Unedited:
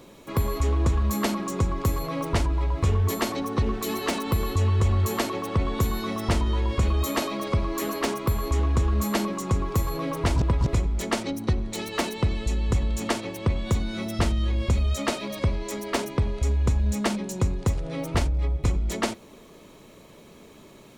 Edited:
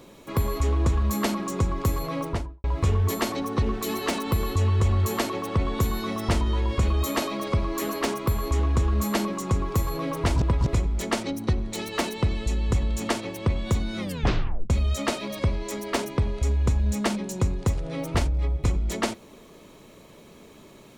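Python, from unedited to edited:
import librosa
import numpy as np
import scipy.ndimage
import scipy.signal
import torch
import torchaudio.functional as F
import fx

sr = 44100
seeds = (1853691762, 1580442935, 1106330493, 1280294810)

y = fx.studio_fade_out(x, sr, start_s=2.15, length_s=0.49)
y = fx.edit(y, sr, fx.tape_stop(start_s=13.99, length_s=0.71), tone=tone)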